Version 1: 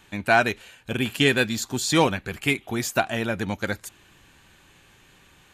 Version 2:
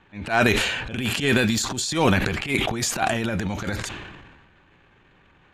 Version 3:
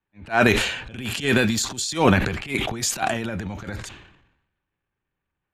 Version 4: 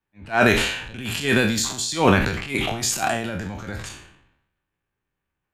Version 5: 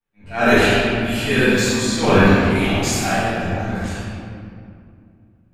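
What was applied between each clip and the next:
low-pass that shuts in the quiet parts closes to 2,000 Hz, open at −20.5 dBFS; transient designer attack −12 dB, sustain +11 dB; level that may fall only so fast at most 39 dB per second
multiband upward and downward expander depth 70%; level −1.5 dB
peak hold with a decay on every bin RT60 0.45 s; level −1 dB
convolution reverb RT60 2.4 s, pre-delay 4 ms, DRR −14.5 dB; level −10.5 dB

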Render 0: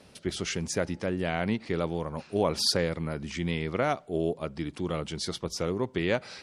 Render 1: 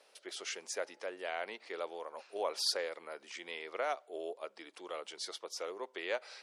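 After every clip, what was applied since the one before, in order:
high-pass filter 460 Hz 24 dB per octave
level −7 dB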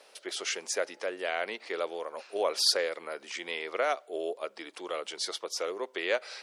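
dynamic equaliser 880 Hz, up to −5 dB, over −53 dBFS, Q 2.6
level +8 dB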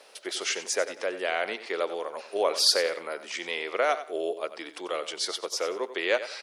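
repeating echo 92 ms, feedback 26%, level −13 dB
level +3.5 dB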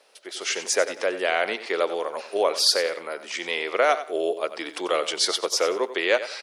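automatic gain control gain up to 15 dB
level −6 dB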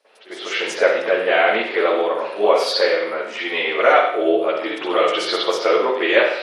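convolution reverb RT60 0.65 s, pre-delay 43 ms, DRR −17 dB
level −9.5 dB

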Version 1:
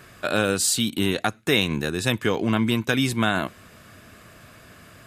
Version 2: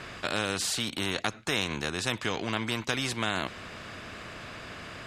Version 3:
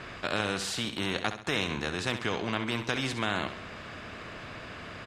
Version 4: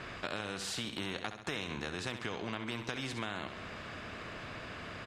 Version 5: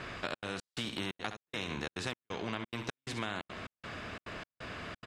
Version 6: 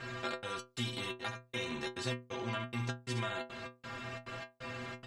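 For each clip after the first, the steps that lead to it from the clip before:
low-pass filter 4,700 Hz 12 dB per octave; every bin compressed towards the loudest bin 2 to 1; level −4.5 dB
high-shelf EQ 6,100 Hz −10.5 dB; repeating echo 67 ms, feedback 40%, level −10 dB
downward compressor 4 to 1, threshold −33 dBFS, peak gain reduction 8.5 dB; level −2 dB
gate pattern "xxxx.xx.." 176 BPM −60 dB; level +1.5 dB
stiff-string resonator 120 Hz, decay 0.33 s, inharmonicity 0.008; level +10.5 dB

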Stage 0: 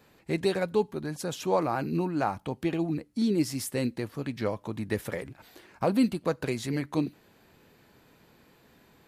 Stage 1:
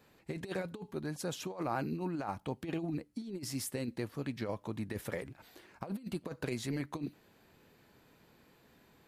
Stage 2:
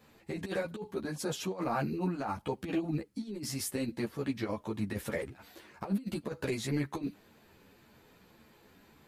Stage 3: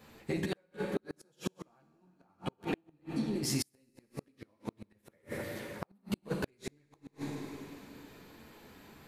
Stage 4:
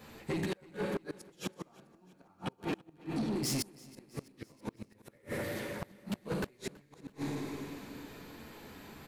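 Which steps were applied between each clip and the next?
compressor whose output falls as the input rises −29 dBFS, ratio −0.5; level −7 dB
string-ensemble chorus; level +6.5 dB
four-comb reverb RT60 2.7 s, DRR 4 dB; gate with flip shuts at −25 dBFS, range −40 dB; level +4 dB
soft clipping −34 dBFS, distortion −9 dB; repeating echo 328 ms, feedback 55%, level −22 dB; level +4.5 dB

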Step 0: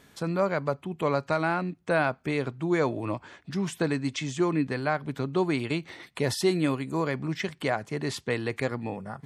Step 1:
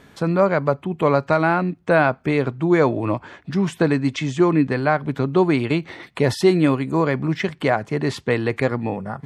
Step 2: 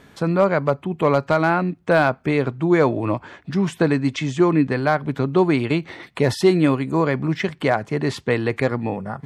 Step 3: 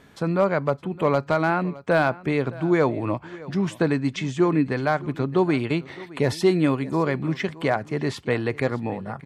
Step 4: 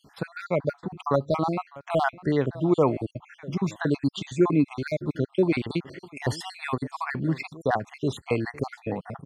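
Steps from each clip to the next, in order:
high-shelf EQ 4,000 Hz −11 dB; level +9 dB
gain into a clipping stage and back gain 6 dB
single-tap delay 615 ms −19.5 dB; level −3.5 dB
time-frequency cells dropped at random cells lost 55%

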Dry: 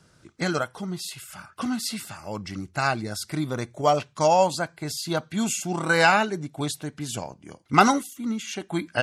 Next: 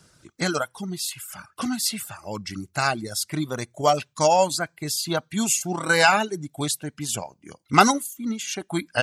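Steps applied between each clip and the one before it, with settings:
reverb reduction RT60 0.85 s
high-shelf EQ 4,800 Hz +8.5 dB
level +1 dB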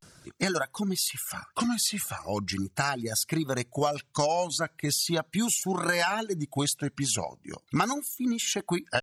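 downward compressor 6 to 1, threshold −27 dBFS, peak gain reduction 16.5 dB
pitch vibrato 0.39 Hz 88 cents
level +3 dB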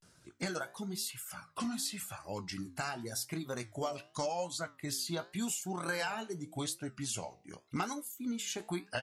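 double-tracking delay 17 ms −11 dB
flanger 0.88 Hz, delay 9.5 ms, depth 9.3 ms, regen −77%
level −5.5 dB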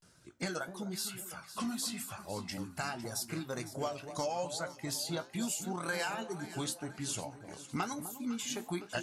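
delay that swaps between a low-pass and a high-pass 253 ms, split 990 Hz, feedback 68%, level −10 dB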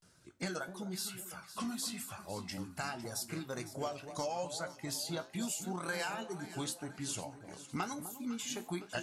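tuned comb filter 92 Hz, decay 0.39 s, harmonics all, mix 40%
level +1.5 dB

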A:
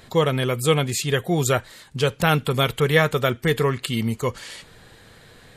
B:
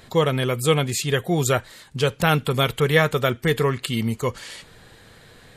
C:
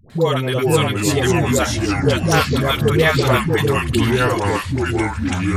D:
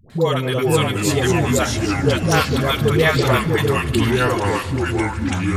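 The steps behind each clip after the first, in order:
no processing that can be heard
all-pass dispersion highs, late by 101 ms, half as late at 530 Hz; delay with pitch and tempo change per echo 354 ms, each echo −4 semitones, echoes 3; level +2.5 dB
echo machine with several playback heads 74 ms, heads all three, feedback 71%, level −23.5 dB; level −1 dB

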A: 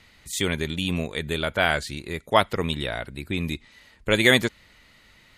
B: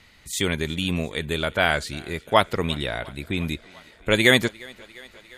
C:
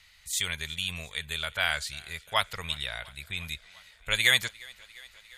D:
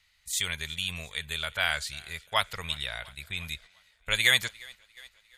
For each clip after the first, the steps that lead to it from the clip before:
feedback echo with a high-pass in the loop 351 ms, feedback 75%, high-pass 230 Hz, level −24 dB; level +1 dB
guitar amp tone stack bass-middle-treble 10-0-10
noise gate −47 dBFS, range −9 dB

